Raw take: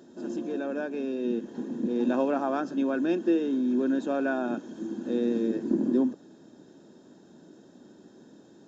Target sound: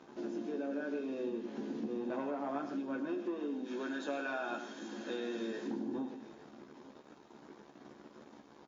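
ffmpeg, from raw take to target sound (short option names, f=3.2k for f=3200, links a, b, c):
-filter_complex "[0:a]asplit=3[a][b][c];[a]afade=t=out:st=3.65:d=0.02[d];[b]tiltshelf=f=710:g=-10,afade=t=in:st=3.65:d=0.02,afade=t=out:st=5.66:d=0.02[e];[c]afade=t=in:st=5.66:d=0.02[f];[d][e][f]amix=inputs=3:normalize=0,acrusher=bits=7:mix=0:aa=0.5,asoftclip=type=tanh:threshold=-20dB,asplit=2[g][h];[h]adelay=14,volume=-4.5dB[i];[g][i]amix=inputs=2:normalize=0,acompressor=threshold=-31dB:ratio=12,highpass=f=240:p=1,aemphasis=mode=reproduction:type=50fm,aecho=1:1:53|104|154|855:0.141|0.299|0.224|0.112,volume=-2dB" -ar 16000 -c:a libmp3lame -b:a 32k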